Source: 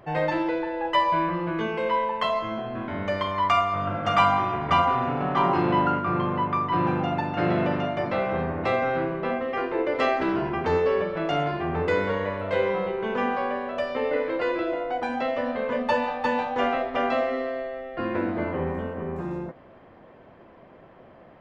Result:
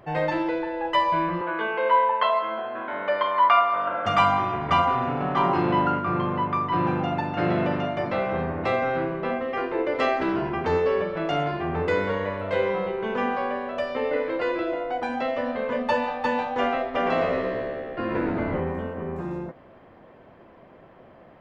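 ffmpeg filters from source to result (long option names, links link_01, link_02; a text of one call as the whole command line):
ffmpeg -i in.wav -filter_complex "[0:a]asettb=1/sr,asplit=3[link_01][link_02][link_03];[link_01]atrim=end=1.414[link_04];[link_02]atrim=start=1.41:end=4.06,asetpts=PTS-STARTPTS,afade=type=in:duration=0.004:curve=qsin,afade=type=out:start_time=2.646:duration=0.004:curve=qsin,highpass=410,equalizer=frequency=550:width_type=q:width=4:gain=5,equalizer=frequency=950:width_type=q:width=4:gain=6,equalizer=frequency=1500:width_type=q:width=4:gain=7,lowpass=frequency=4100:width=0.5412,lowpass=frequency=4100:width=1.3066[link_05];[link_03]atrim=start=4.056[link_06];[link_04][link_05]acrossfade=duration=0.004:curve1=hsin:curve2=qsin[link_07];[link_07][link_06]acrossfade=duration=0.004:curve1=qsin:curve2=hsin,asettb=1/sr,asplit=3[link_08][link_09][link_10];[link_08]atrim=end=16.844[link_11];[link_09]atrim=start=16.84:end=18.6,asetpts=PTS-STARTPTS,afade=type=in:duration=0.004:curve=qsin,afade=type=out:start_time=1.756:duration=0.004:curve=qsin,asplit=7[link_12][link_13][link_14][link_15][link_16][link_17][link_18];[link_13]adelay=112,afreqshift=-73,volume=-5.5dB[link_19];[link_14]adelay=224,afreqshift=-146,volume=-11.7dB[link_20];[link_15]adelay=336,afreqshift=-219,volume=-17.9dB[link_21];[link_16]adelay=448,afreqshift=-292,volume=-24.1dB[link_22];[link_17]adelay=560,afreqshift=-365,volume=-30.3dB[link_23];[link_18]adelay=672,afreqshift=-438,volume=-36.5dB[link_24];[link_12][link_19][link_20][link_21][link_22][link_23][link_24]amix=inputs=7:normalize=0,atrim=end_sample=77616[link_25];[link_10]atrim=start=18.596[link_26];[link_11][link_25]acrossfade=duration=0.004:curve1=hsin:curve2=qsin[link_27];[link_27][link_26]acrossfade=duration=0.004:curve1=qsin:curve2=hsin" out.wav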